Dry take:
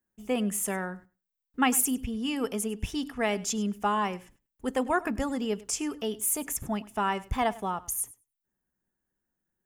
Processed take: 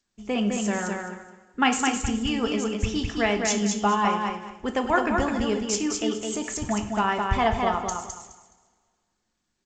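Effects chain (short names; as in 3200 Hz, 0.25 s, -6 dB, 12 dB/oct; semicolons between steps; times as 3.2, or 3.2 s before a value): on a send: feedback echo 0.21 s, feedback 24%, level -4 dB; on the sum: two-slope reverb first 0.52 s, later 1.9 s, from -18 dB, DRR 5.5 dB; harmonic-percussive split harmonic -4 dB; gain +5.5 dB; G.722 64 kbps 16000 Hz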